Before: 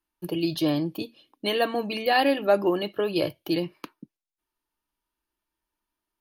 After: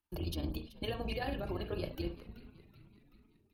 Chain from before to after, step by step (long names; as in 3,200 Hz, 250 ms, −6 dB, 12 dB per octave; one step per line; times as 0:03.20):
sub-octave generator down 2 octaves, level +4 dB
downward compressor 2 to 1, threshold −33 dBFS, peak gain reduction 10.5 dB
brickwall limiter −23 dBFS, peak gain reduction 6.5 dB
amplitude modulation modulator 27 Hz, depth 40%
time stretch by overlap-add 0.57×, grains 68 ms
echo with shifted repeats 380 ms, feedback 57%, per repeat −96 Hz, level −17 dB
convolution reverb, pre-delay 35 ms, DRR 8 dB
level −2 dB